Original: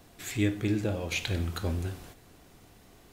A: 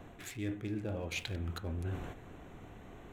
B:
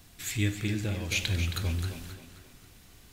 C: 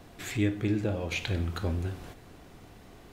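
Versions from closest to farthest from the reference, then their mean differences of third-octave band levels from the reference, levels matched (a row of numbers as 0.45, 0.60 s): C, B, A; 3.0, 4.0, 6.5 dB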